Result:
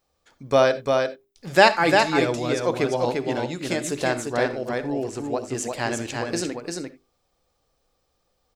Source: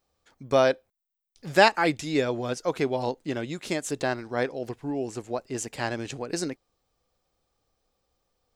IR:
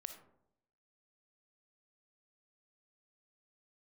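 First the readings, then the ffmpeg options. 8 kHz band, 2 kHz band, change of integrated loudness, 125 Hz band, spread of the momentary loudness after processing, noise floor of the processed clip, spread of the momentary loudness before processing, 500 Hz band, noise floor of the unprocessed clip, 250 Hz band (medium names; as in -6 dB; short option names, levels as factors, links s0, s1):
+4.5 dB, +5.0 dB, +4.0 dB, +4.0 dB, 12 LU, -72 dBFS, 14 LU, +4.5 dB, -82 dBFS, +3.5 dB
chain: -filter_complex "[0:a]bandreject=f=50:t=h:w=6,bandreject=f=100:t=h:w=6,bandreject=f=150:t=h:w=6,bandreject=f=200:t=h:w=6,bandreject=f=250:t=h:w=6,bandreject=f=300:t=h:w=6,bandreject=f=350:t=h:w=6,bandreject=f=400:t=h:w=6,aecho=1:1:347:0.631,asplit=2[s0][s1];[1:a]atrim=start_sample=2205,atrim=end_sample=3969,asetrate=40572,aresample=44100[s2];[s1][s2]afir=irnorm=-1:irlink=0,volume=2.11[s3];[s0][s3]amix=inputs=2:normalize=0,volume=0.631"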